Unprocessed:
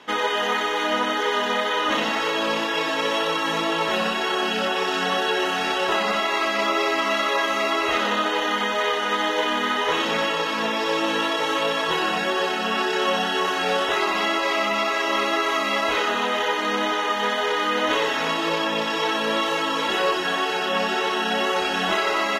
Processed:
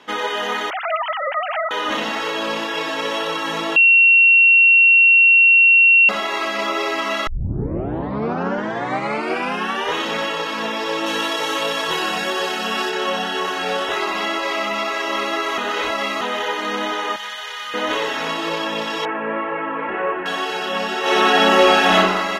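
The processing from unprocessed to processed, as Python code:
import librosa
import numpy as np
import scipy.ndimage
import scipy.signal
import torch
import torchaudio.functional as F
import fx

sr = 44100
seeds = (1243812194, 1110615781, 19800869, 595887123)

y = fx.sine_speech(x, sr, at=(0.7, 1.71))
y = fx.high_shelf(y, sr, hz=4500.0, db=8.0, at=(11.06, 12.9))
y = fx.tone_stack(y, sr, knobs='10-0-10', at=(17.16, 17.74))
y = fx.steep_lowpass(y, sr, hz=2400.0, slope=48, at=(19.05, 20.26))
y = fx.reverb_throw(y, sr, start_s=21.01, length_s=0.95, rt60_s=1.1, drr_db=-8.5)
y = fx.edit(y, sr, fx.bleep(start_s=3.76, length_s=2.33, hz=2730.0, db=-8.0),
    fx.tape_start(start_s=7.27, length_s=2.69),
    fx.reverse_span(start_s=15.58, length_s=0.63), tone=tone)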